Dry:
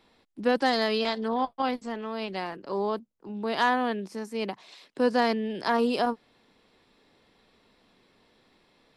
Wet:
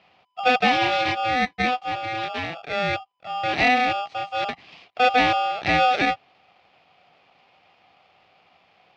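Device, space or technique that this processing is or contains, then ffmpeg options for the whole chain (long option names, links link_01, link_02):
ring modulator pedal into a guitar cabinet: -af "aeval=exprs='val(0)*sgn(sin(2*PI*1000*n/s))':channel_layout=same,highpass=91,equalizer=frequency=95:width_type=q:width=4:gain=3,equalizer=frequency=170:width_type=q:width=4:gain=5,equalizer=frequency=750:width_type=q:width=4:gain=9,equalizer=frequency=1500:width_type=q:width=4:gain=-7,equalizer=frequency=2400:width_type=q:width=4:gain=8,lowpass=frequency=4200:width=0.5412,lowpass=frequency=4200:width=1.3066,volume=3dB"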